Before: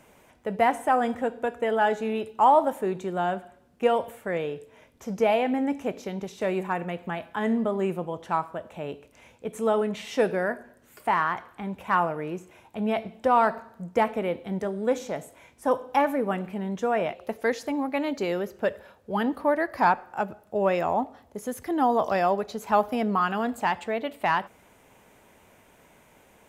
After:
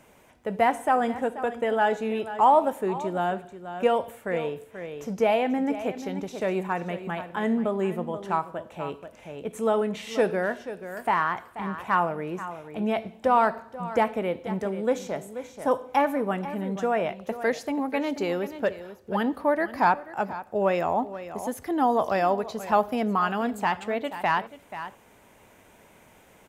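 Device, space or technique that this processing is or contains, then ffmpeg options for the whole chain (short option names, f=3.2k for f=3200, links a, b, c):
ducked delay: -filter_complex "[0:a]asplit=3[a][b][c];[b]adelay=484,volume=-3dB[d];[c]apad=whole_len=1189387[e];[d][e]sidechaincompress=threshold=-34dB:ratio=5:attack=25:release=1090[f];[a][f]amix=inputs=2:normalize=0"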